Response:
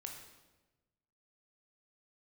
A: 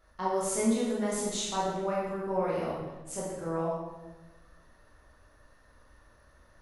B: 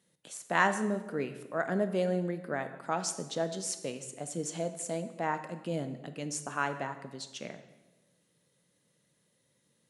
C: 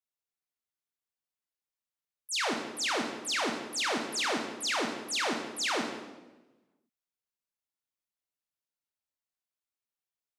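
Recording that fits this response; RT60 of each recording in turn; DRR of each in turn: C; 1.1, 1.1, 1.1 s; -7.0, 9.0, 1.5 dB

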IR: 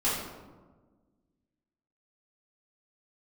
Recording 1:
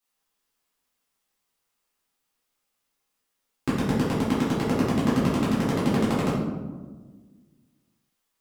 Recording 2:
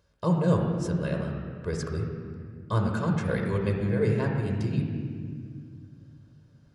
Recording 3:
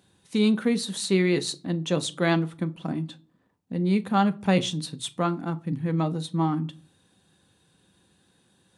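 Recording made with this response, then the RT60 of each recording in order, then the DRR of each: 1; 1.4, 2.0, 0.40 s; -10.0, 1.0, 10.0 dB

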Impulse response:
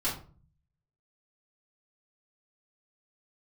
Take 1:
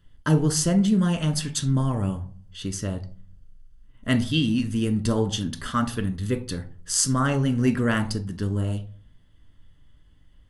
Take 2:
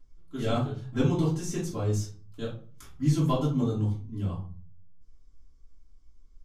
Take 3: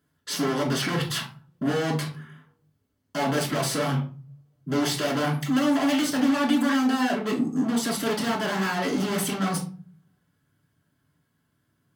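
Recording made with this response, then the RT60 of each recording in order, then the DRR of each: 2; 0.45, 0.40, 0.40 s; 7.0, -10.0, -2.0 dB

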